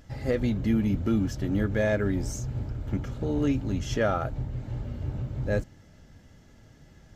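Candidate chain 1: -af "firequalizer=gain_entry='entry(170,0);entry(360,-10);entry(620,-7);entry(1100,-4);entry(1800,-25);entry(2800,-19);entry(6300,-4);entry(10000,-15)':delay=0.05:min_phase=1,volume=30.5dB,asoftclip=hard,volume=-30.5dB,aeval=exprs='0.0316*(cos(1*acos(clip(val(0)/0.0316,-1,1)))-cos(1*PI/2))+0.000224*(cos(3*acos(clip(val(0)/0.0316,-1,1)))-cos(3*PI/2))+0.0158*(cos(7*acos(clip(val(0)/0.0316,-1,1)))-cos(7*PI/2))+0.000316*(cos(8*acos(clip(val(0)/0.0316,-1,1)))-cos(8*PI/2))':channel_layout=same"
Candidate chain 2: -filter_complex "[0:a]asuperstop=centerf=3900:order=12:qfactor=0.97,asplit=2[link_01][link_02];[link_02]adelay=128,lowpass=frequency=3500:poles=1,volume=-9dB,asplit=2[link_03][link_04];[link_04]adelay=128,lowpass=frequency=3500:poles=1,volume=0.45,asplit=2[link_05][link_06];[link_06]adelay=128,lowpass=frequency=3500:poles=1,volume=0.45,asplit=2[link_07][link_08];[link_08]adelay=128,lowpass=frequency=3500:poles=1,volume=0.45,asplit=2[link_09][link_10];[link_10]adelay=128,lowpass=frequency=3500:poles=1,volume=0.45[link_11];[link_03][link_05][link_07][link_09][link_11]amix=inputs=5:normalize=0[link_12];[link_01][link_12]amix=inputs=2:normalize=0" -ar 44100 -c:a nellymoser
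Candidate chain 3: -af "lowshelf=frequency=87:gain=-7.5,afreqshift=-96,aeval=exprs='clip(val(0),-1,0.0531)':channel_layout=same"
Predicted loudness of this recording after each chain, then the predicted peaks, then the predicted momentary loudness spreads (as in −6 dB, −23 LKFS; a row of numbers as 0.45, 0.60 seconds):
−36.0, −28.0, −32.0 LKFS; −29.0, −13.0, −13.0 dBFS; 14, 9, 14 LU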